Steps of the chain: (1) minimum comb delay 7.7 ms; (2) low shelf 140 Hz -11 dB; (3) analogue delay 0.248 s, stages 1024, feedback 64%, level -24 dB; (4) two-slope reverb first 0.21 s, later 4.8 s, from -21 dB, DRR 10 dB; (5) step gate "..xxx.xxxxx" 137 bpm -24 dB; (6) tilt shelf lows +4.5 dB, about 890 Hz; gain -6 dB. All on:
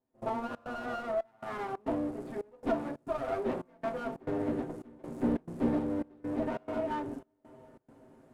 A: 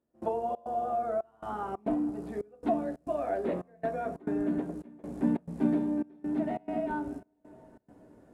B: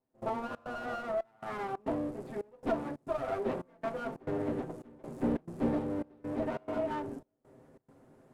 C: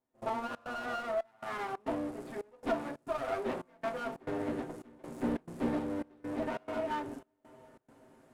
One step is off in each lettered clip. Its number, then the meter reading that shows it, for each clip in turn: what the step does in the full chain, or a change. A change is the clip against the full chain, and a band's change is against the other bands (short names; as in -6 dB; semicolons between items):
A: 1, 2 kHz band -5.0 dB; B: 4, 250 Hz band -1.5 dB; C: 6, 4 kHz band +5.5 dB